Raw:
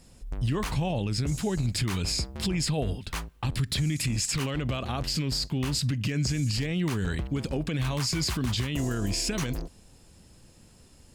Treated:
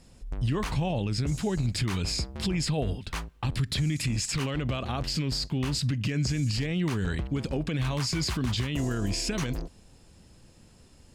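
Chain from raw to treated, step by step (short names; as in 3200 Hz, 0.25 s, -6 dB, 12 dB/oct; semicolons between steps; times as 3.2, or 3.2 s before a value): high shelf 10000 Hz -9.5 dB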